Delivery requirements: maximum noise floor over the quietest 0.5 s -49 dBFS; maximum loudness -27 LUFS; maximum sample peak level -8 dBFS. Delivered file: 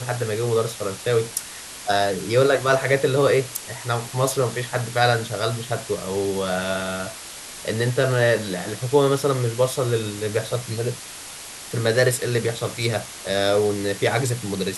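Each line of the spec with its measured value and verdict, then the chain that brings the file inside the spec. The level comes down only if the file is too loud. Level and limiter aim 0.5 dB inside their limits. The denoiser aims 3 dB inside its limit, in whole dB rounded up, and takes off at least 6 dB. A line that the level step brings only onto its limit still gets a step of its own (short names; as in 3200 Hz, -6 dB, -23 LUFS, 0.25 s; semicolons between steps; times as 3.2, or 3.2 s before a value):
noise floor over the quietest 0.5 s -37 dBFS: fail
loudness -22.5 LUFS: fail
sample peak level -4.5 dBFS: fail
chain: denoiser 10 dB, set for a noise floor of -37 dBFS; gain -5 dB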